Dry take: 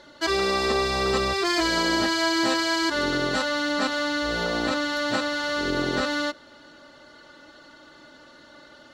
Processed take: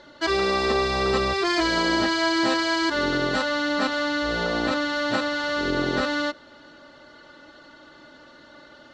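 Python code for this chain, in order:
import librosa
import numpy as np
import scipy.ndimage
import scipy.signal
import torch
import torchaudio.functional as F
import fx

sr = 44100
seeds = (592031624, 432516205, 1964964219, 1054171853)

y = fx.air_absorb(x, sr, metres=74.0)
y = y * librosa.db_to_amplitude(1.5)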